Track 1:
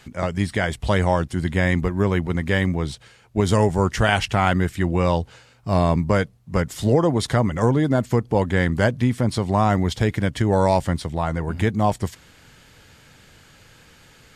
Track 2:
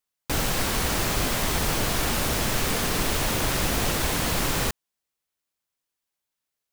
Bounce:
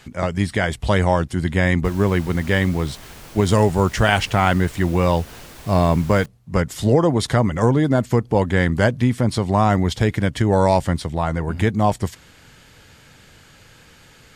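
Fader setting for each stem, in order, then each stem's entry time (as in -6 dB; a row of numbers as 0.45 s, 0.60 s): +2.0 dB, -16.0 dB; 0.00 s, 1.55 s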